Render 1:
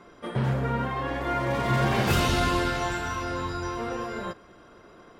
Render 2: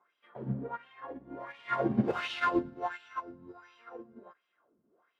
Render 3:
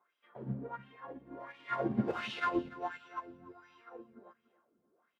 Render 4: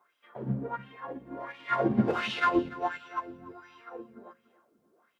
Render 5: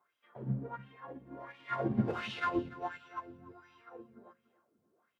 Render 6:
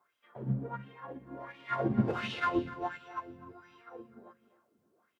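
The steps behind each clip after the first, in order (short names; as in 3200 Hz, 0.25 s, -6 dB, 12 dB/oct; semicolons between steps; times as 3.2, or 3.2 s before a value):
wah 1.4 Hz 200–3000 Hz, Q 3.1; upward expander 2.5:1, over -42 dBFS; gain +7.5 dB
feedback echo 0.29 s, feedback 31%, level -19 dB; gain -4 dB
notches 60/120/180/240/300/360/420/480/540 Hz; gain +7.5 dB
bell 100 Hz +8.5 dB 1.3 oct; gain -8 dB
echo 0.25 s -17.5 dB; gain +2.5 dB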